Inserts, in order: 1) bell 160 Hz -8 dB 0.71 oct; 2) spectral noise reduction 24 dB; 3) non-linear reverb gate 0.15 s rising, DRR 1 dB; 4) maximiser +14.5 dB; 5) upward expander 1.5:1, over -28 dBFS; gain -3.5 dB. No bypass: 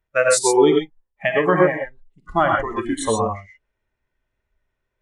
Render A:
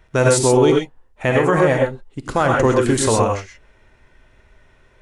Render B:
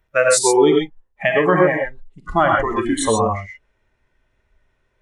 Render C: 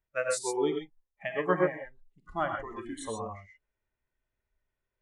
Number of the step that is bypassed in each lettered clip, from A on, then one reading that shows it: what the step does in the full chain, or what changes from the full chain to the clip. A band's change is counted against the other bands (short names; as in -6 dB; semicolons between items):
2, 125 Hz band +9.0 dB; 5, momentary loudness spread change -3 LU; 4, crest factor change +6.0 dB